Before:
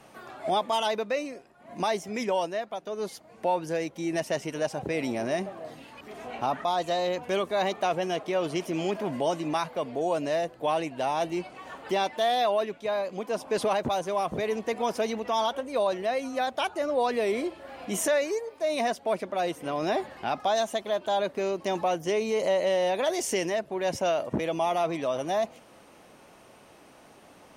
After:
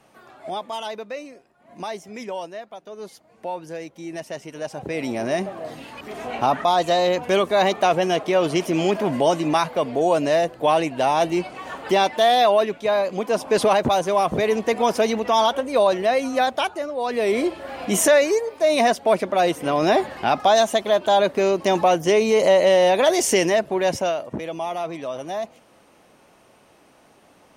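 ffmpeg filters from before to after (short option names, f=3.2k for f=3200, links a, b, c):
-af "volume=21dB,afade=t=in:st=4.52:d=1.35:silence=0.251189,afade=t=out:st=16.43:d=0.51:silence=0.266073,afade=t=in:st=16.94:d=0.57:silence=0.237137,afade=t=out:st=23.71:d=0.51:silence=0.298538"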